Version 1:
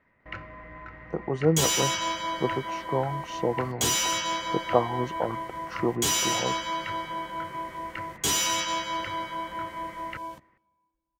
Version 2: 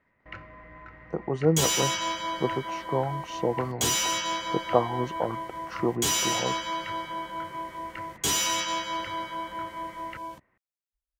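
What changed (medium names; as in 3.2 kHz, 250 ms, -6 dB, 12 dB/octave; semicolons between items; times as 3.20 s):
first sound -3.5 dB; reverb: off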